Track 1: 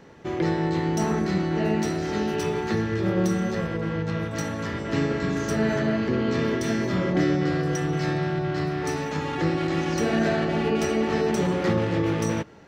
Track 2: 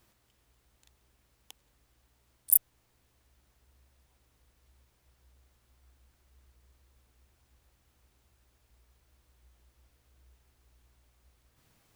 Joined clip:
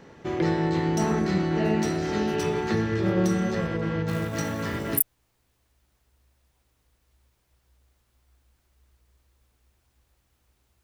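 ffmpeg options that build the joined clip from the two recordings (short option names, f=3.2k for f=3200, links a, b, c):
-filter_complex "[0:a]asettb=1/sr,asplit=3[a][b][c];[a]atrim=end=4.084[d];[b]atrim=start=4.08:end=5.01,asetpts=PTS-STARTPTS,afade=t=in:d=0.004:c=qsin,afade=t=out:st=0.926:d=0.004:c=qsin,acrusher=bits=5:mode=log:mix=0:aa=0.000001[e];[c]atrim=start=5.006[f];[d][e]acrossfade=d=0.004:c1=hsin:c2=qsin[g];[g][f]acrossfade=d=0.004:c1=qsin:c2=hsin,apad=whole_dur=10.83,atrim=end=10.83,atrim=end=5.01,asetpts=PTS-STARTPTS[h];[1:a]atrim=start=2.46:end=8.38,asetpts=PTS-STARTPTS[i];[h][i]acrossfade=d=0.1:c1=tri:c2=tri"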